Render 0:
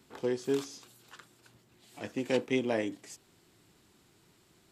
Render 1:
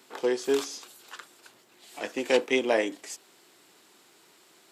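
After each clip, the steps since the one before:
high-pass filter 410 Hz 12 dB per octave
level +8.5 dB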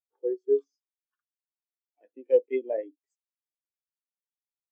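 every bin expanded away from the loudest bin 2.5 to 1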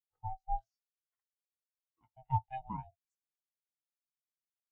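ring modulation 390 Hz
level −8 dB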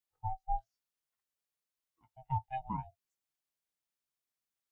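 brickwall limiter −26.5 dBFS, peak gain reduction 7 dB
level +3 dB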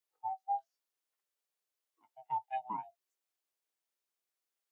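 four-pole ladder high-pass 280 Hz, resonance 25%
level +6.5 dB

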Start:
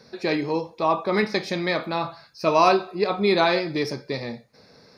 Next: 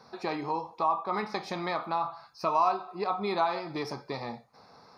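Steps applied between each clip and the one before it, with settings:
flat-topped bell 970 Hz +13 dB 1.1 octaves
downward compressor 2 to 1, threshold −25 dBFS, peak gain reduction 13 dB
level −6.5 dB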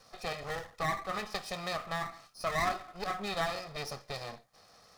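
lower of the sound and its delayed copy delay 1.6 ms
high-shelf EQ 4,100 Hz +11 dB
level −5 dB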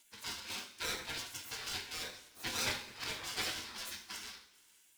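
gate on every frequency bin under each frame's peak −20 dB weak
flanger 0.78 Hz, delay 7.8 ms, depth 3.5 ms, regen −62%
coupled-rooms reverb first 0.42 s, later 2 s, from −16 dB, DRR 4 dB
level +10.5 dB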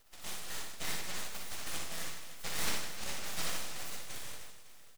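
full-wave rectification
on a send: reverse bouncing-ball delay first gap 60 ms, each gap 1.6×, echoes 5
on the sum: level +2 dB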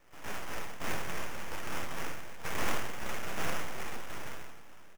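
double-tracking delay 31 ms −5 dB
sample-rate reduction 4,200 Hz, jitter 20%
level +1 dB

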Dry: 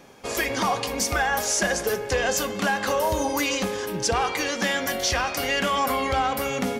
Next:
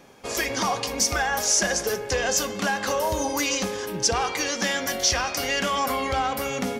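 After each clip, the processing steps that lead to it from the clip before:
dynamic equaliser 5,700 Hz, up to +7 dB, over −41 dBFS, Q 1.8
level −1.5 dB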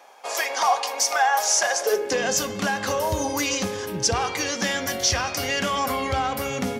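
high-pass filter sweep 750 Hz → 89 Hz, 0:01.77–0:02.45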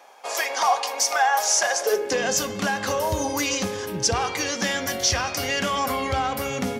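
no processing that can be heard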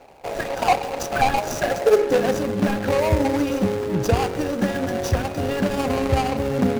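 running median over 41 samples
level +8.5 dB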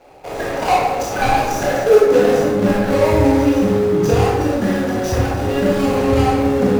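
convolution reverb RT60 1.1 s, pre-delay 18 ms, DRR −5.5 dB
level −2 dB

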